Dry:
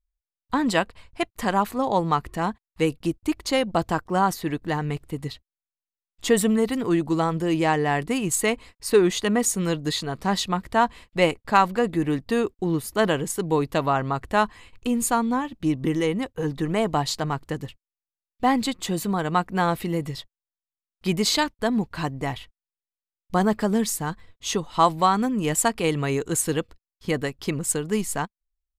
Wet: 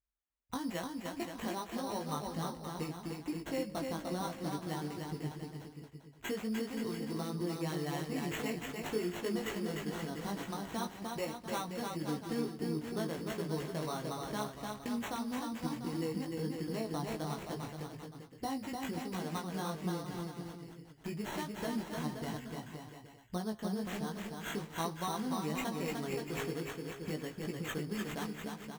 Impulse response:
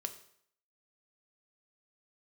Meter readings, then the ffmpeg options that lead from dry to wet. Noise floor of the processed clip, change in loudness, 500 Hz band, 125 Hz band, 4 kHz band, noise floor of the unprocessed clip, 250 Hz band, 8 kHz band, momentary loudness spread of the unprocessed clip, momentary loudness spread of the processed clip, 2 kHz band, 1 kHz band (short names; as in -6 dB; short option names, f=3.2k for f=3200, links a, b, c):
-55 dBFS, -14.5 dB, -14.5 dB, -12.0 dB, -14.0 dB, under -85 dBFS, -12.5 dB, -18.5 dB, 9 LU, 7 LU, -14.5 dB, -17.0 dB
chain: -filter_complex "[0:a]highpass=f=160:p=1,lowshelf=f=360:g=8,bandreject=f=3.7k:w=12,acompressor=threshold=-32dB:ratio=3,flanger=delay=9.1:depth=5.5:regen=90:speed=0.27:shape=triangular,acrusher=samples=9:mix=1:aa=0.000001,flanger=delay=17:depth=3:speed=1.2,asplit=2[a][b];[b]aecho=0:1:300|525|693.8|820.3|915.2:0.631|0.398|0.251|0.158|0.1[c];[a][c]amix=inputs=2:normalize=0"